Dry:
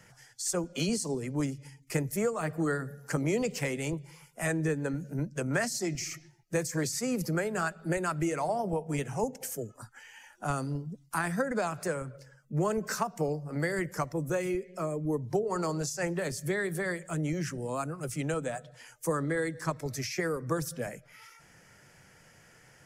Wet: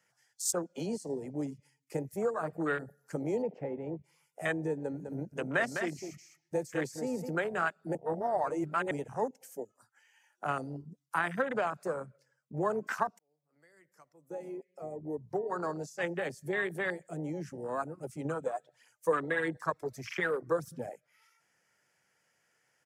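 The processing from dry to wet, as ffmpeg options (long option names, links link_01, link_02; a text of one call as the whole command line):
ffmpeg -i in.wav -filter_complex "[0:a]asettb=1/sr,asplit=3[link_01][link_02][link_03];[link_01]atrim=end=3.424[link_04];[link_02]atrim=start=3.42:end=4.04,asetpts=PTS-STARTPTS,afade=type=in:duration=0.004:curve=qsin,afade=type=out:start_time=0.616:duration=0.004:curve=qsin,lowpass=1500[link_05];[link_03]atrim=start=4.036[link_06];[link_04][link_05]acrossfade=duration=0.004:curve1=hsin:curve2=qsin[link_07];[link_07][link_06]acrossfade=duration=0.004:curve1=qsin:curve2=hsin,asplit=3[link_08][link_09][link_10];[link_08]afade=type=out:start_time=5:duration=0.02[link_11];[link_09]aecho=1:1:204:0.473,afade=type=in:start_time=5:duration=0.02,afade=type=out:start_time=7.29:duration=0.02[link_12];[link_10]afade=type=in:start_time=7.29:duration=0.02[link_13];[link_11][link_12][link_13]amix=inputs=3:normalize=0,asettb=1/sr,asplit=3[link_14][link_15][link_16];[link_14]atrim=end=18.254[link_17];[link_15]atrim=start=18.25:end=20.92,asetpts=PTS-STARTPTS,afade=type=in:duration=0.004:curve=qsin,afade=type=out:start_time=2.666:duration=0.004:curve=qsin,aphaser=in_gain=1:out_gain=1:delay=3:decay=0.5:speed=1.6:type=triangular[link_18];[link_16]atrim=start=20.916[link_19];[link_17][link_18]acrossfade=duration=0.004:curve1=hsin:curve2=qsin[link_20];[link_20][link_19]acrossfade=duration=0.004:curve1=qsin:curve2=hsin,asplit=4[link_21][link_22][link_23][link_24];[link_21]atrim=end=7.952[link_25];[link_22]atrim=start=7.948:end=8.912,asetpts=PTS-STARTPTS,areverse[link_26];[link_23]atrim=start=8.908:end=13.19,asetpts=PTS-STARTPTS,afade=type=out:start_time=4.278:duration=0.004:curve=hsin[link_27];[link_24]atrim=start=13.19,asetpts=PTS-STARTPTS,afade=type=in:duration=2.93[link_28];[link_25][link_26]acrossfade=duration=0.004:curve1=hsin:curve2=hsin[link_29];[link_27][link_28]concat=n=2:v=0:a=1[link_30];[link_29][link_30]acrossfade=duration=0.004:curve1=hsin:curve2=hsin,highpass=frequency=500:poles=1,afwtdn=0.0158,volume=2dB" out.wav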